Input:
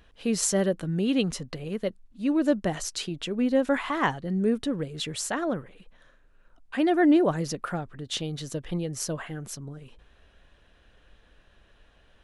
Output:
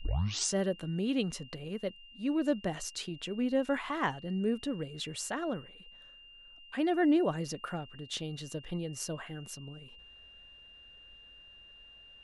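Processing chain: tape start at the beginning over 0.54 s; whine 2800 Hz -46 dBFS; gain -6.5 dB

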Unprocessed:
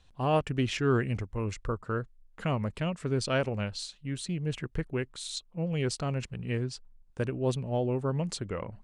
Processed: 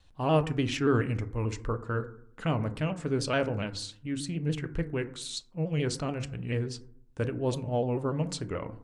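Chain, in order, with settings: FDN reverb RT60 0.62 s, low-frequency decay 1.3×, high-frequency decay 0.35×, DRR 9 dB; shaped vibrato saw down 6.9 Hz, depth 100 cents

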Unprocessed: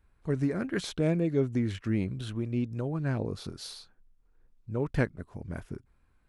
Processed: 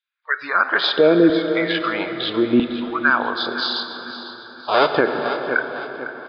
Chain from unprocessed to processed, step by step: 3.75–4.88 half-waves squared off; LFO high-pass saw down 0.77 Hz 270–3200 Hz; in parallel at -1 dB: compressor, threshold -36 dBFS, peak gain reduction 16 dB; on the sum: rippled Chebyshev low-pass 5000 Hz, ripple 9 dB; spectral noise reduction 26 dB; on a send: feedback echo 0.503 s, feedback 39%, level -14 dB; on the sum: plate-style reverb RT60 4.8 s, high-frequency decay 0.65×, DRR 8.5 dB; maximiser +23.5 dB; gain -4 dB

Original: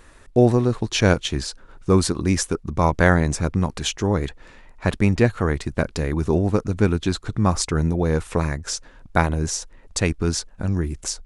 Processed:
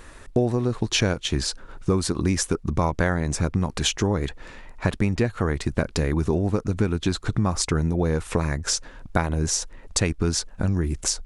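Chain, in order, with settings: compressor 6:1, threshold -23 dBFS, peak gain reduction 13 dB; gain +4.5 dB

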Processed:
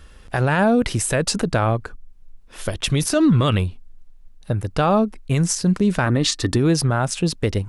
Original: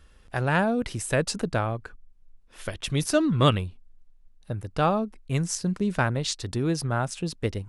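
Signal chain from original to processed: 1.82–2.8 dynamic EQ 2100 Hz, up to -7 dB, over -53 dBFS, Q 0.92; 6.06–6.56 small resonant body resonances 290/1200/1800 Hz, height 11 dB; maximiser +18.5 dB; gain -8.5 dB

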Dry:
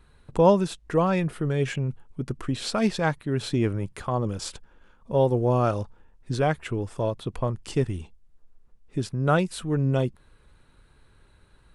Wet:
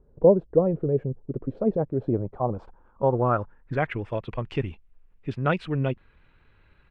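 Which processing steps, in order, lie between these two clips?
tempo 1.7×; low-pass sweep 500 Hz -> 2500 Hz, 1.85–4.12; gain -2 dB

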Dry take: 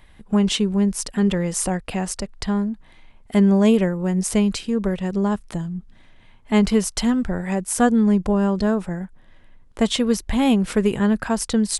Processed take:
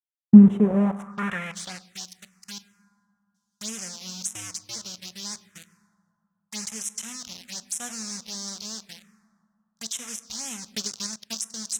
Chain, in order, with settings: 4.33–4.76 cycle switcher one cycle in 2, inverted; bit-crush 4-bit; 2.58–3.61 passive tone stack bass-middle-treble 6-0-2; gate -24 dBFS, range -31 dB; resonant low shelf 240 Hz +9.5 dB, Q 1.5; reverb RT60 2.3 s, pre-delay 6 ms, DRR 12 dB; band-pass sweep 220 Hz -> 6000 Hz, 0.28–1.97; envelope phaser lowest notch 400 Hz, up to 4600 Hz, full sweep at -30.5 dBFS; 10.71–11.35 transient shaper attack +8 dB, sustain -8 dB; gain +4 dB

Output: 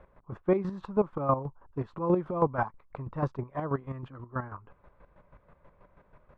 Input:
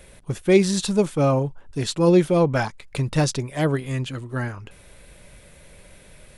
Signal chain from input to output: synth low-pass 1100 Hz, resonance Q 3.8; chopper 6.2 Hz, depth 65%, duty 30%; gain -7 dB

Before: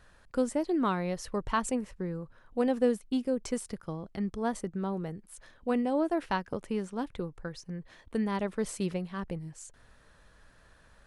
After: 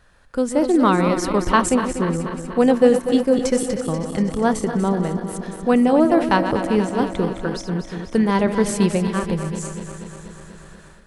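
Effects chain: regenerating reverse delay 0.121 s, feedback 81%, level -9.5 dB; AGC gain up to 9.5 dB; gain +3 dB

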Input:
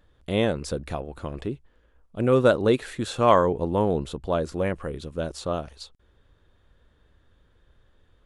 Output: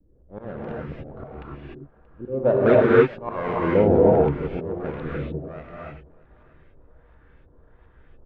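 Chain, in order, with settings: switching dead time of 0.25 ms; vibrato 0.51 Hz 23 cents; LFO low-pass saw up 1.4 Hz 270–2600 Hz; auto swell 0.418 s; air absorption 66 m; feedback echo 0.63 s, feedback 31%, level -22.5 dB; non-linear reverb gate 0.33 s rising, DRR -6 dB

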